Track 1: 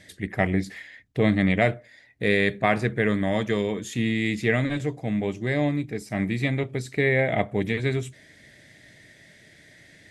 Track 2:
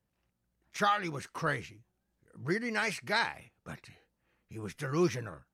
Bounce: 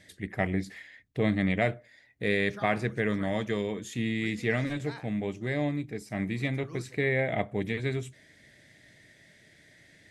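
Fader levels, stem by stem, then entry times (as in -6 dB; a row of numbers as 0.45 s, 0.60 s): -5.5 dB, -15.5 dB; 0.00 s, 1.75 s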